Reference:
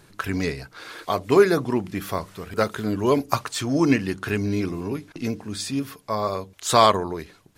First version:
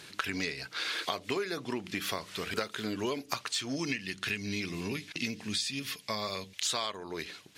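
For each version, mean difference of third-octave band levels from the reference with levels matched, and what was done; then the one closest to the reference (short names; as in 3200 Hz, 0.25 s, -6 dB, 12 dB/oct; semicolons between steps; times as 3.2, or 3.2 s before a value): 7.0 dB: weighting filter D; spectral gain 3.76–6.65, 240–1700 Hz -6 dB; compressor 12:1, threshold -30 dBFS, peak gain reduction 22.5 dB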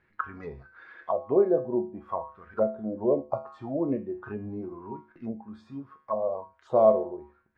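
13.0 dB: spectral noise reduction 8 dB; resonator 73 Hz, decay 0.39 s, harmonics odd, mix 80%; envelope low-pass 590–2000 Hz down, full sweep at -31 dBFS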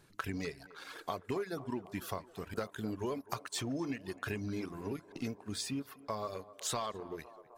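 5.0 dB: reverb removal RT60 0.96 s; sample leveller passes 1; compressor 10:1, threshold -25 dBFS, peak gain reduction 17 dB; narrowing echo 0.256 s, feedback 81%, band-pass 700 Hz, level -15.5 dB; gain -9 dB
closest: third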